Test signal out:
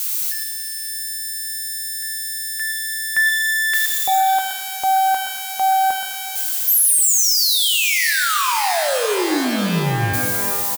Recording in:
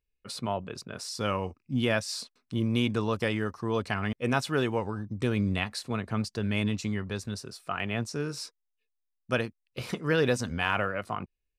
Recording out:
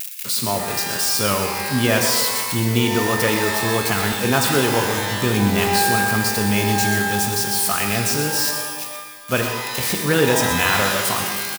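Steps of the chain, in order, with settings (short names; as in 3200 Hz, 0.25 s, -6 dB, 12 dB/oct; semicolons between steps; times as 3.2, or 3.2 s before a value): switching spikes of -23.5 dBFS; on a send: echo 0.123 s -10 dB; on the sum: shimmer reverb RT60 1.5 s, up +12 st, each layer -2 dB, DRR 4.5 dB; gain +7 dB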